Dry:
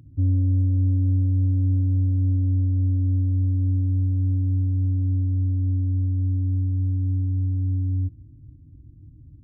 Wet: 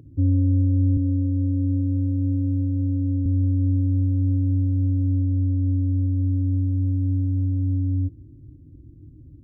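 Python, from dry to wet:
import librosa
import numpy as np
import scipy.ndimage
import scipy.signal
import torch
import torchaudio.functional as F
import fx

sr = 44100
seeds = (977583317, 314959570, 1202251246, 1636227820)

y = fx.highpass(x, sr, hz=99.0, slope=12, at=(0.97, 3.26))
y = fx.peak_eq(y, sr, hz=410.0, db=13.5, octaves=0.98)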